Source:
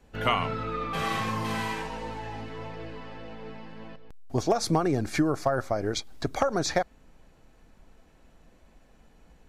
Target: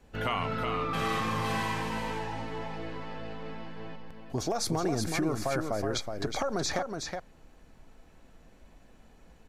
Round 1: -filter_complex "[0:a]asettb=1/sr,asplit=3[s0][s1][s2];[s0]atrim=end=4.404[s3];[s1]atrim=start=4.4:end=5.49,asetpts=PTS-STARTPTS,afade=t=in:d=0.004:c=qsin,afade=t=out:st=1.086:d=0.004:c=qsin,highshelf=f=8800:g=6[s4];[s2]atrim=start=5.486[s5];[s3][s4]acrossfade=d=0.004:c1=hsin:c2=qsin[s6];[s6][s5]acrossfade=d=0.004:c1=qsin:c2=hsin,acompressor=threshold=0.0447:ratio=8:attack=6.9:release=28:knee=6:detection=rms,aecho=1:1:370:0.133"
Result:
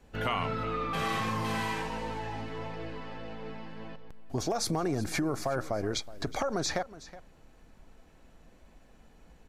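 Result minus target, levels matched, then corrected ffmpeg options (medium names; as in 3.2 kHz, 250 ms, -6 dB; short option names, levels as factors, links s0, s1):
echo-to-direct -12 dB
-filter_complex "[0:a]asettb=1/sr,asplit=3[s0][s1][s2];[s0]atrim=end=4.404[s3];[s1]atrim=start=4.4:end=5.49,asetpts=PTS-STARTPTS,afade=t=in:d=0.004:c=qsin,afade=t=out:st=1.086:d=0.004:c=qsin,highshelf=f=8800:g=6[s4];[s2]atrim=start=5.486[s5];[s3][s4]acrossfade=d=0.004:c1=hsin:c2=qsin[s6];[s6][s5]acrossfade=d=0.004:c1=qsin:c2=hsin,acompressor=threshold=0.0447:ratio=8:attack=6.9:release=28:knee=6:detection=rms,aecho=1:1:370:0.531"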